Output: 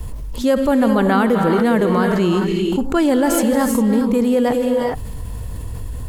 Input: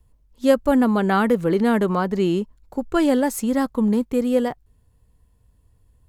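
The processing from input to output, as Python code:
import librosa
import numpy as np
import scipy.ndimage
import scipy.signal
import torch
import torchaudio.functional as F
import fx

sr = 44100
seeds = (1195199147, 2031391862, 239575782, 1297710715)

y = fx.peak_eq(x, sr, hz=560.0, db=-8.5, octaves=0.9, at=(1.96, 2.85))
y = fx.rev_gated(y, sr, seeds[0], gate_ms=430, shape='rising', drr_db=6.0)
y = fx.env_flatten(y, sr, amount_pct=70)
y = y * librosa.db_to_amplitude(-1.5)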